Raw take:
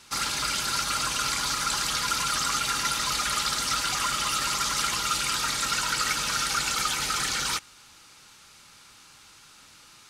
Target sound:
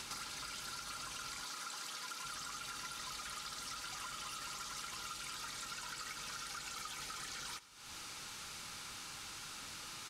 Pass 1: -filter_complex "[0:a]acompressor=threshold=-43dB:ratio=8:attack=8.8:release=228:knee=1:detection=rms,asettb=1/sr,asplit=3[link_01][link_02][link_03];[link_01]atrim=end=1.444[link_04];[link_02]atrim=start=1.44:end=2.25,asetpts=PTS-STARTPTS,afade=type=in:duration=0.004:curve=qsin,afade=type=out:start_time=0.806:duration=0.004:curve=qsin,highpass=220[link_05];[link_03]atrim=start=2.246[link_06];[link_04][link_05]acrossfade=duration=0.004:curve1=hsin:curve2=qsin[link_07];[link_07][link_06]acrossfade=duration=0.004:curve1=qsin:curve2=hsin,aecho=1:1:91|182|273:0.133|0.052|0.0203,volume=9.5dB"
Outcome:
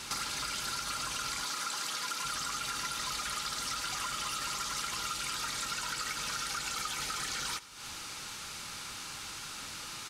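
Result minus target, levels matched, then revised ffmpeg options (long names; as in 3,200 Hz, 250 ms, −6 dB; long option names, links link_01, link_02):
downward compressor: peak gain reduction −9 dB
-filter_complex "[0:a]acompressor=threshold=-53.5dB:ratio=8:attack=8.8:release=228:knee=1:detection=rms,asettb=1/sr,asplit=3[link_01][link_02][link_03];[link_01]atrim=end=1.444[link_04];[link_02]atrim=start=1.44:end=2.25,asetpts=PTS-STARTPTS,afade=type=in:duration=0.004:curve=qsin,afade=type=out:start_time=0.806:duration=0.004:curve=qsin,highpass=220[link_05];[link_03]atrim=start=2.246[link_06];[link_04][link_05]acrossfade=duration=0.004:curve1=hsin:curve2=qsin[link_07];[link_07][link_06]acrossfade=duration=0.004:curve1=qsin:curve2=hsin,aecho=1:1:91|182|273:0.133|0.052|0.0203,volume=9.5dB"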